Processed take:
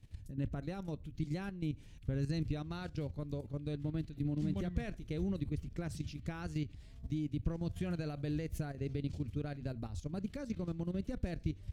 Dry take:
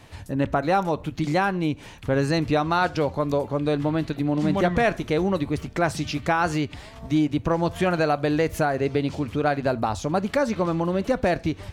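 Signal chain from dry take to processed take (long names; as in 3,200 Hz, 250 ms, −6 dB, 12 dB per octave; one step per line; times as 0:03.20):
output level in coarse steps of 12 dB
guitar amp tone stack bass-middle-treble 10-0-1
level +7.5 dB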